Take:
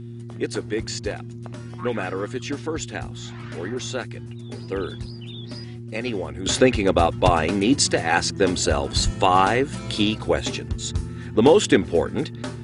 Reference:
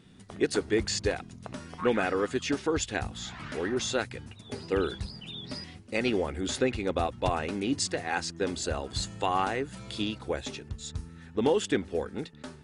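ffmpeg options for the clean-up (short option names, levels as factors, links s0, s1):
-filter_complex "[0:a]bandreject=f=117.6:t=h:w=4,bandreject=f=235.2:t=h:w=4,bandreject=f=352.8:t=h:w=4,asplit=3[s0][s1][s2];[s0]afade=t=out:st=9.04:d=0.02[s3];[s1]highpass=f=140:w=0.5412,highpass=f=140:w=1.3066,afade=t=in:st=9.04:d=0.02,afade=t=out:st=9.16:d=0.02[s4];[s2]afade=t=in:st=9.16:d=0.02[s5];[s3][s4][s5]amix=inputs=3:normalize=0,asetnsamples=n=441:p=0,asendcmd='6.46 volume volume -10.5dB',volume=1"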